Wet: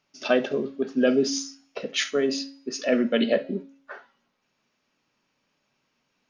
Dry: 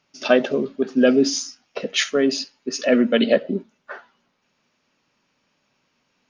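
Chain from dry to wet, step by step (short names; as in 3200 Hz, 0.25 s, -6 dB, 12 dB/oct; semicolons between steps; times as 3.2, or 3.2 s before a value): de-hum 274.7 Hz, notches 35; on a send: reverb, pre-delay 3 ms, DRR 13 dB; on the sum: gain -5 dB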